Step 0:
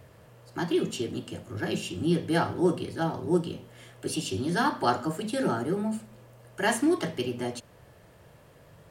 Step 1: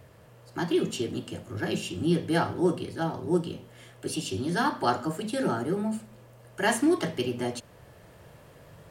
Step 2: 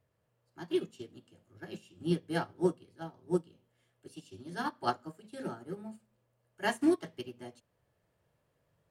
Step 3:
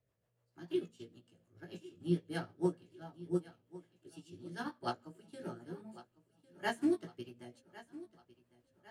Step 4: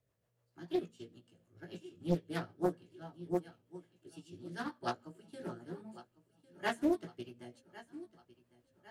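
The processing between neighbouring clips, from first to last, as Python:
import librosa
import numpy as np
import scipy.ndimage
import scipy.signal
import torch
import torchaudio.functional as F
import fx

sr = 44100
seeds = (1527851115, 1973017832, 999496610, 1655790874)

y1 = fx.rider(x, sr, range_db=3, speed_s=2.0)
y2 = fx.upward_expand(y1, sr, threshold_db=-34.0, expansion=2.5)
y2 = y2 * 10.0 ** (-2.0 / 20.0)
y3 = fx.doubler(y2, sr, ms=17.0, db=-5.5)
y3 = fx.rotary(y3, sr, hz=6.7)
y3 = fx.echo_feedback(y3, sr, ms=1103, feedback_pct=51, wet_db=-18)
y3 = y3 * 10.0 ** (-4.5 / 20.0)
y4 = fx.doppler_dist(y3, sr, depth_ms=0.74)
y4 = y4 * 10.0 ** (1.0 / 20.0)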